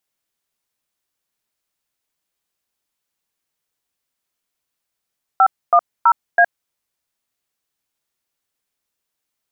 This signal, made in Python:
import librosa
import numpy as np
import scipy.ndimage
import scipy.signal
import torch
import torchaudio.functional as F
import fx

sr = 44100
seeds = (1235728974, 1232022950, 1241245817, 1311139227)

y = fx.dtmf(sr, digits='510A', tone_ms=65, gap_ms=262, level_db=-10.5)